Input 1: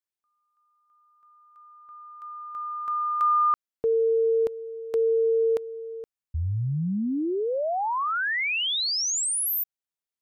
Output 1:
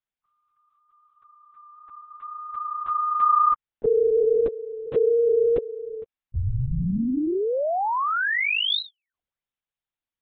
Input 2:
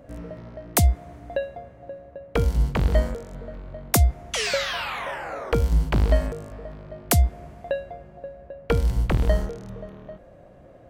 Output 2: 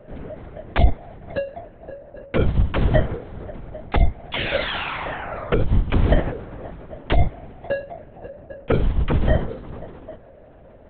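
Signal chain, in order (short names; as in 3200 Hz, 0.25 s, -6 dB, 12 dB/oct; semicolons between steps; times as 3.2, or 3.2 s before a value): LPC vocoder at 8 kHz whisper; gain +2.5 dB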